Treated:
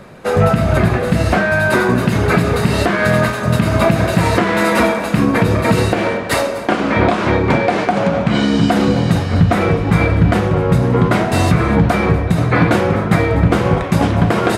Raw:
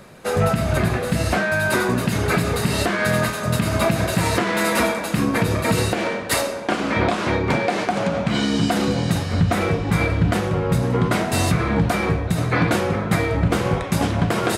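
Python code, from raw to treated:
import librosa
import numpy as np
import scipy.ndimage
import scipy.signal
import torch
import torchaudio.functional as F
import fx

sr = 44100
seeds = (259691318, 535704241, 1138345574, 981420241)

p1 = fx.high_shelf(x, sr, hz=3900.0, db=-10.0)
p2 = p1 + fx.echo_single(p1, sr, ms=246, db=-17.0, dry=0)
y = F.gain(torch.from_numpy(p2), 6.5).numpy()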